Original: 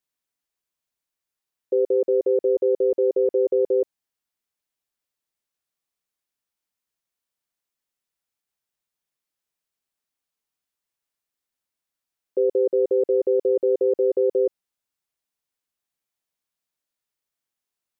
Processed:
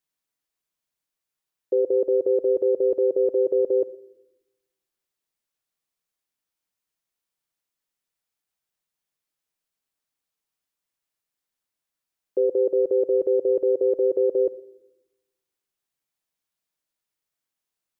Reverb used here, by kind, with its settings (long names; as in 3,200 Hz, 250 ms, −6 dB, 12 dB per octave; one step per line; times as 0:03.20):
rectangular room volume 2,800 cubic metres, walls furnished, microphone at 0.58 metres